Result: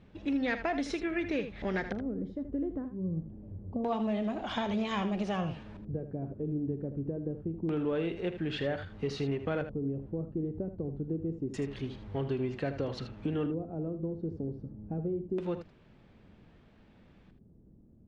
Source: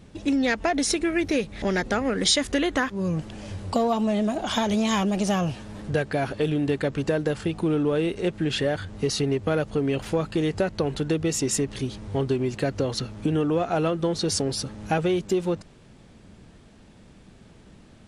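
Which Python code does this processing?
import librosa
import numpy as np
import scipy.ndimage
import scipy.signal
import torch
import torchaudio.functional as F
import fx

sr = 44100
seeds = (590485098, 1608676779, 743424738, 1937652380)

y = fx.filter_lfo_lowpass(x, sr, shape='square', hz=0.26, low_hz=330.0, high_hz=2900.0, q=0.9)
y = fx.room_early_taps(y, sr, ms=(43, 79), db=(-17.5, -10.5))
y = F.gain(torch.from_numpy(y), -8.5).numpy()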